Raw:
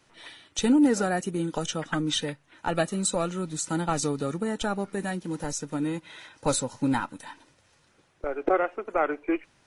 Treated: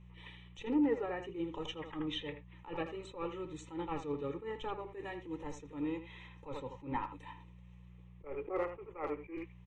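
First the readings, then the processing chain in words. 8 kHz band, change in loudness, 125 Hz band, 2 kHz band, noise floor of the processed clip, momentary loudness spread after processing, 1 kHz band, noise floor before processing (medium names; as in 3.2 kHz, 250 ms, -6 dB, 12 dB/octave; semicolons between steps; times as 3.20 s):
-30.0 dB, -12.0 dB, -14.5 dB, -13.5 dB, -56 dBFS, 16 LU, -12.0 dB, -64 dBFS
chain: band-stop 4.2 kHz, Q 19; low-pass that closes with the level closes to 2.3 kHz, closed at -20.5 dBFS; treble shelf 3.4 kHz +6.5 dB; static phaser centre 1 kHz, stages 8; mains buzz 60 Hz, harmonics 3, -50 dBFS -3 dB/octave; flange 1.3 Hz, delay 5.4 ms, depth 1.7 ms, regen -75%; distance through air 180 m; speakerphone echo 80 ms, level -10 dB; attacks held to a fixed rise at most 160 dB/s; trim -1 dB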